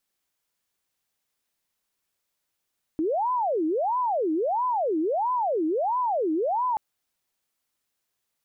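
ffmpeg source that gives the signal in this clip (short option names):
-f lavfi -i "aevalsrc='0.0794*sin(2*PI*(659.5*t-350.5/(2*PI*1.5)*sin(2*PI*1.5*t)))':d=3.78:s=44100"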